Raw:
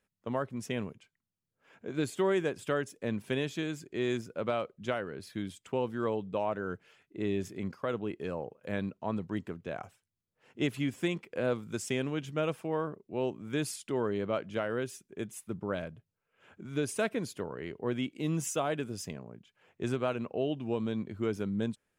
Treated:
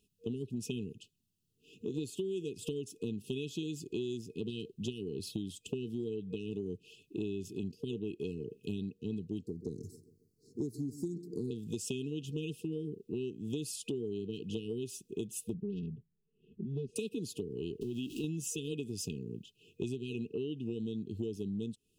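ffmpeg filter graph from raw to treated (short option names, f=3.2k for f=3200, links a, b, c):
-filter_complex "[0:a]asettb=1/sr,asplit=3[a][b][c];[a]atrim=end=9.464[d];[b]atrim=start=9.46:end=11.51,asetpts=PTS-STARTPTS,afade=t=in:d=0.004:c=qsin,afade=t=out:st=2.046:d=0.004:c=qsin,asuperstop=centerf=2000:order=20:qfactor=0.6,asplit=2[e][f];[f]adelay=137,lowpass=f=2.1k:p=1,volume=-17dB,asplit=2[g][h];[h]adelay=137,lowpass=f=2.1k:p=1,volume=0.45,asplit=2[i][j];[j]adelay=137,lowpass=f=2.1k:p=1,volume=0.45,asplit=2[k][l];[l]adelay=137,lowpass=f=2.1k:p=1,volume=0.45[m];[e][g][i][k][m]amix=inputs=5:normalize=0,atrim=end_sample=90405[n];[c]atrim=start=11.506[o];[d][n]acrossfade=d=0.004:c1=hsin:c2=qsin[p];[p][o]acrossfade=d=0.004:c1=qsin:c2=hsin,asettb=1/sr,asplit=3[q][r][s];[q]atrim=end=15.544[t];[r]atrim=start=15.54:end=16.96,asetpts=PTS-STARTPTS,afade=t=in:d=0.004:c=qsin,afade=t=out:st=1.416:d=0.004:c=qsin,equalizer=f=530:w=0.46:g=-7.5,aecho=1:1:5:0.95,atrim=end_sample=62622,adynamicsmooth=sensitivity=1:basefreq=860[u];[s]atrim=start=16.956[v];[t][u]acrossfade=d=0.004:c1=hsin:c2=qsin[w];[w][v]acrossfade=d=0.004:c1=qsin:c2=hsin,asettb=1/sr,asplit=3[x][y][z];[x]atrim=end=17.814[aa];[y]atrim=start=17.81:end=18.24,asetpts=PTS-STARTPTS,afade=t=in:d=0.004:c=qsin,afade=t=out:st=0.426:d=0.004:c=qsin,aeval=exprs='val(0)+0.5*0.00501*sgn(val(0))':c=same,acompressor=threshold=-38dB:ratio=2.5:attack=3.2:release=140:knee=1:detection=peak[ab];[z]atrim=start=18.236[ac];[aa][ab]acrossfade=d=0.004:c1=hsin:c2=qsin[ad];[ad][ac]acrossfade=d=0.004:c1=qsin:c2=hsin,afftfilt=real='re*(1-between(b*sr/4096,470,2500))':imag='im*(1-between(b*sr/4096,470,2500))':win_size=4096:overlap=0.75,acompressor=threshold=-42dB:ratio=10,volume=8dB"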